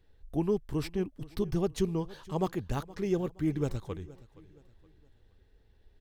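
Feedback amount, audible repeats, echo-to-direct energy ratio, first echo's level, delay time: 37%, 2, -19.5 dB, -20.0 dB, 0.47 s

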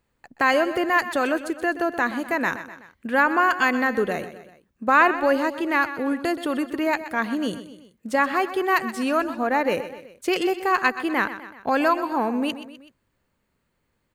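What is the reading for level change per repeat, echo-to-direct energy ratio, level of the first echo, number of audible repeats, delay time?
-5.5 dB, -11.5 dB, -13.0 dB, 3, 0.126 s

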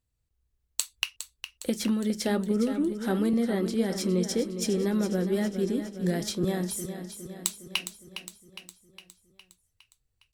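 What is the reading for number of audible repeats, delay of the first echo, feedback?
6, 0.41 s, 57%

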